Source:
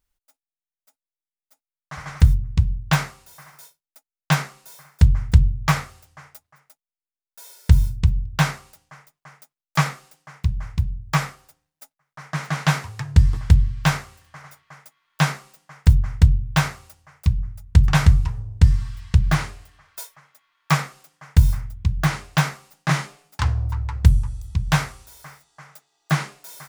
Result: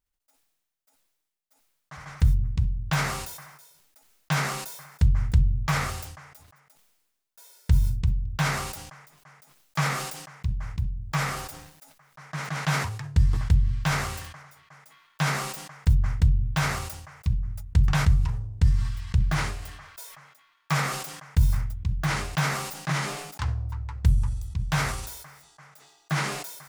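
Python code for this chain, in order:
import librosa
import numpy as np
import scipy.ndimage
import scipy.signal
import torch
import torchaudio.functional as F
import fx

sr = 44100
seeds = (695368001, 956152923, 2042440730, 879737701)

y = fx.sustainer(x, sr, db_per_s=48.0)
y = y * librosa.db_to_amplitude(-8.0)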